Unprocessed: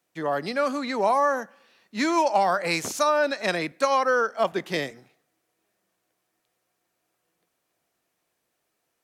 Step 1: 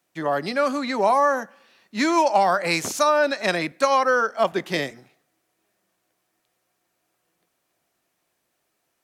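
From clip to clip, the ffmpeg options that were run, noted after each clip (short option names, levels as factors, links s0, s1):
-af "bandreject=f=470:w=14,volume=1.41"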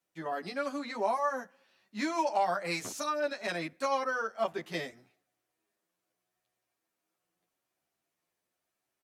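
-filter_complex "[0:a]asplit=2[s0][s1];[s1]adelay=9.8,afreqshift=0.86[s2];[s0][s2]amix=inputs=2:normalize=1,volume=0.376"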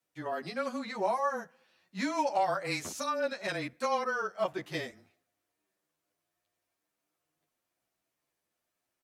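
-af "afreqshift=-22"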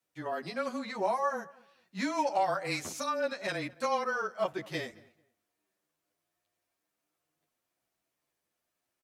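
-filter_complex "[0:a]asplit=2[s0][s1];[s1]adelay=219,lowpass=f=2400:p=1,volume=0.075,asplit=2[s2][s3];[s3]adelay=219,lowpass=f=2400:p=1,volume=0.23[s4];[s0][s2][s4]amix=inputs=3:normalize=0"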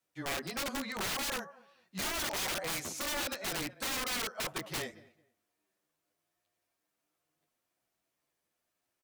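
-af "aeval=exprs='(mod(31.6*val(0)+1,2)-1)/31.6':c=same"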